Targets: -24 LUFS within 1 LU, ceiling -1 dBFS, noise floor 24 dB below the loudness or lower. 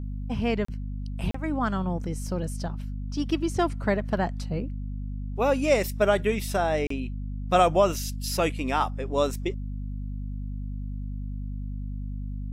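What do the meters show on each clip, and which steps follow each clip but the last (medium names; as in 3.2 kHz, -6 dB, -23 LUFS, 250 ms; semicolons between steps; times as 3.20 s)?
dropouts 3; longest dropout 34 ms; hum 50 Hz; highest harmonic 250 Hz; hum level -30 dBFS; loudness -28.0 LUFS; peak level -9.0 dBFS; loudness target -24.0 LUFS
-> interpolate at 0.65/1.31/6.87 s, 34 ms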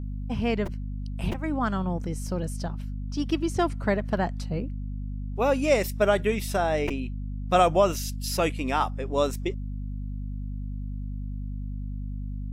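dropouts 0; hum 50 Hz; highest harmonic 250 Hz; hum level -30 dBFS
-> hum notches 50/100/150/200/250 Hz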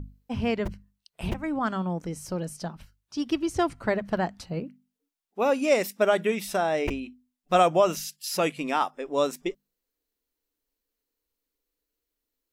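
hum not found; loudness -27.5 LUFS; peak level -9.0 dBFS; loudness target -24.0 LUFS
-> trim +3.5 dB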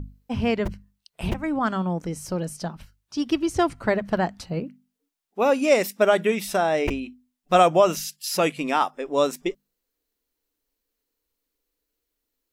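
loudness -24.0 LUFS; peak level -5.5 dBFS; noise floor -81 dBFS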